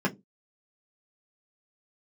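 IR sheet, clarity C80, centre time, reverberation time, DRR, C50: 29.0 dB, 9 ms, not exponential, -3.0 dB, 20.5 dB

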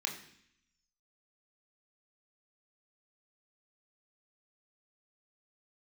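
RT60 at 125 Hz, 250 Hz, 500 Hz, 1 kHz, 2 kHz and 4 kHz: 0.95, 0.90, 0.65, 0.70, 0.85, 0.85 s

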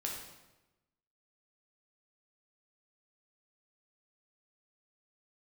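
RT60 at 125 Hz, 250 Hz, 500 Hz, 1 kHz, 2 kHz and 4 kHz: 1.2, 1.2, 1.1, 1.0, 0.90, 0.85 s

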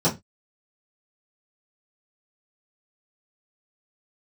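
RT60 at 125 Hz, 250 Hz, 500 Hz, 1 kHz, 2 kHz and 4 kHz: 0.30, 0.25, 0.20, 0.20, 0.20, 0.20 s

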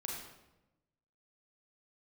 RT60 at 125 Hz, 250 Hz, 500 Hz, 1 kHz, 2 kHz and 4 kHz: 1.4, 1.3, 1.0, 0.90, 0.80, 0.70 s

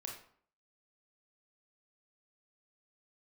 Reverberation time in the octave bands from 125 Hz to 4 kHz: 0.55, 0.60, 0.55, 0.55, 0.45, 0.40 s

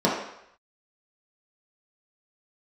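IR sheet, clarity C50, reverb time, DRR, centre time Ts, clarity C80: 2.5 dB, 0.75 s, -6.5 dB, 48 ms, 6.0 dB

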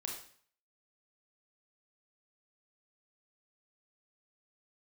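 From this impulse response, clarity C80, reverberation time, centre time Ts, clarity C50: 8.5 dB, 0.55 s, 34 ms, 4.0 dB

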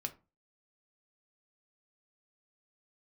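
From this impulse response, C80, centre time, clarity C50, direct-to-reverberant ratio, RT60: 23.0 dB, 6 ms, 17.0 dB, 4.5 dB, 0.30 s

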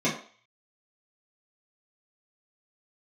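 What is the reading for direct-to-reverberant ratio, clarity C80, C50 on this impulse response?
-9.5 dB, 11.5 dB, 7.5 dB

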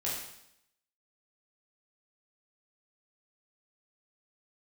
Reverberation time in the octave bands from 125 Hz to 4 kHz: 0.80, 0.80, 0.75, 0.75, 0.75, 0.80 s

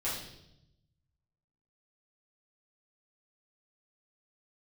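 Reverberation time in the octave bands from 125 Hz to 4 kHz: 1.7, 1.2, 0.95, 0.70, 0.70, 0.85 s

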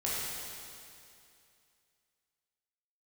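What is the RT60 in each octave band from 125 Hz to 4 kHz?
2.5, 2.5, 2.5, 2.5, 2.5, 2.5 s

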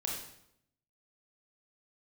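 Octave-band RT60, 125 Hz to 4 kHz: 1.0, 0.90, 0.80, 0.70, 0.65, 0.65 s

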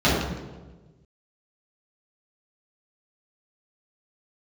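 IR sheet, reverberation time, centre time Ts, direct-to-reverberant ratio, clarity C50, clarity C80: 1.3 s, 76 ms, -11.0 dB, 0.0 dB, 3.0 dB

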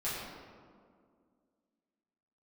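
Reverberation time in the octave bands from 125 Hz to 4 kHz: 2.1, 2.7, 2.3, 1.9, 1.3, 1.0 s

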